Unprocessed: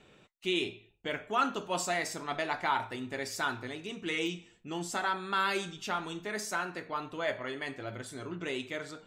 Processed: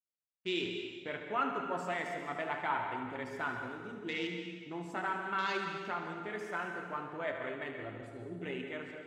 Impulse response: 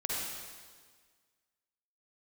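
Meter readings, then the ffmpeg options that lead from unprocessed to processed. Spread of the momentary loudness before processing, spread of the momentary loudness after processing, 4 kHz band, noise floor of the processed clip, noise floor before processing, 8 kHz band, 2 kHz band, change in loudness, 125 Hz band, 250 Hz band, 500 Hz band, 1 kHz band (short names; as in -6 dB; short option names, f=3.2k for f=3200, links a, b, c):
9 LU, 9 LU, -6.5 dB, -54 dBFS, -63 dBFS, -18.0 dB, -3.0 dB, -3.5 dB, -3.0 dB, -3.0 dB, -3.0 dB, -3.0 dB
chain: -filter_complex "[0:a]afwtdn=0.01,agate=range=-33dB:threshold=-44dB:ratio=3:detection=peak,asplit=2[a][b];[1:a]atrim=start_sample=2205,adelay=74[c];[b][c]afir=irnorm=-1:irlink=0,volume=-8.5dB[d];[a][d]amix=inputs=2:normalize=0,volume=-4.5dB"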